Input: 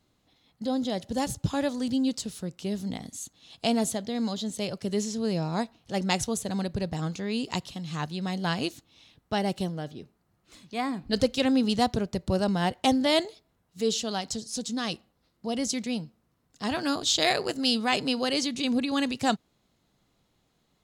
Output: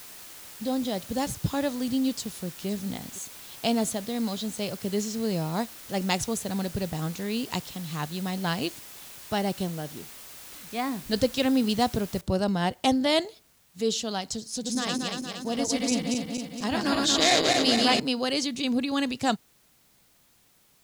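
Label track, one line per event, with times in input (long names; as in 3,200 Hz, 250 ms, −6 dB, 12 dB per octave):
2.170000	2.670000	delay throw 510 ms, feedback 15%, level −17 dB
12.210000	12.210000	noise floor change −45 dB −63 dB
14.520000	18.000000	feedback delay that plays each chunk backwards 116 ms, feedback 76%, level −1.5 dB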